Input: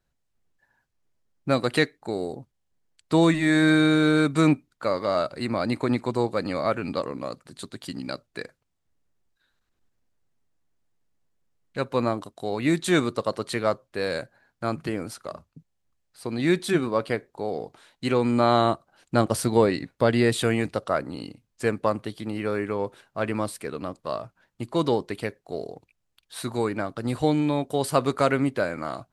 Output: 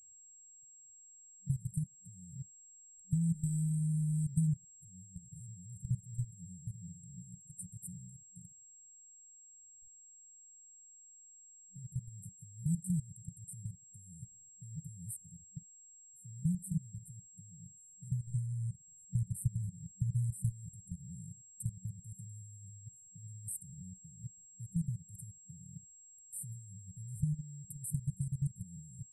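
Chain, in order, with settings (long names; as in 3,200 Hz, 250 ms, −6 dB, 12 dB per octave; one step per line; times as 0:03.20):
output level in coarse steps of 22 dB
steady tone 7,600 Hz −59 dBFS
downward compressor 2.5 to 1, threshold −27 dBFS, peak gain reduction 7.5 dB
brick-wall band-stop 190–7,600 Hz
level +5 dB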